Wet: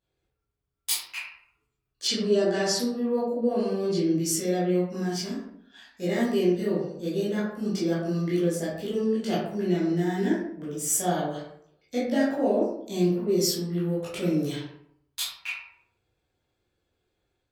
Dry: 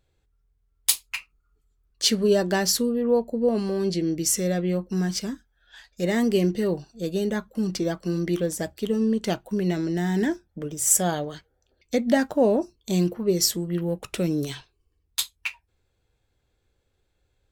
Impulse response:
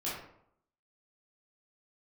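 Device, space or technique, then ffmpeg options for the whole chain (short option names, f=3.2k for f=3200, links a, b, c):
far laptop microphone: -filter_complex "[1:a]atrim=start_sample=2205[a];[0:a][a]afir=irnorm=-1:irlink=0,highpass=f=100:p=1,dynaudnorm=f=100:g=5:m=4dB,asplit=3[b][c][d];[b]afade=t=out:st=2.07:d=0.02[e];[c]lowpass=f=9.4k:w=0.5412,lowpass=f=9.4k:w=1.3066,afade=t=in:st=2.07:d=0.02,afade=t=out:st=2.78:d=0.02[f];[d]afade=t=in:st=2.78:d=0.02[g];[e][f][g]amix=inputs=3:normalize=0,volume=-9dB"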